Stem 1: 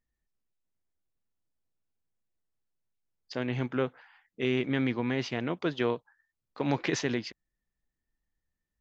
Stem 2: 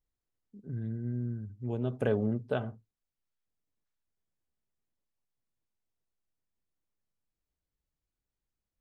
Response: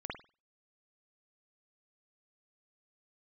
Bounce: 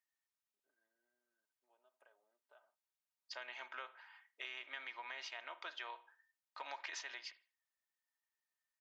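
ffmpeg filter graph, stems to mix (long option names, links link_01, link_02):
-filter_complex "[0:a]volume=-3.5dB,asplit=2[link_01][link_02];[link_02]volume=-13dB[link_03];[1:a]acompressor=threshold=-38dB:ratio=16,highshelf=frequency=2200:gain=-9,volume=-15dB,asplit=2[link_04][link_05];[link_05]volume=-20dB[link_06];[2:a]atrim=start_sample=2205[link_07];[link_03][link_06]amix=inputs=2:normalize=0[link_08];[link_08][link_07]afir=irnorm=-1:irlink=0[link_09];[link_01][link_04][link_09]amix=inputs=3:normalize=0,highpass=frequency=780:width=0.5412,highpass=frequency=780:width=1.3066,aecho=1:1:3.2:0.47,acompressor=threshold=-46dB:ratio=3"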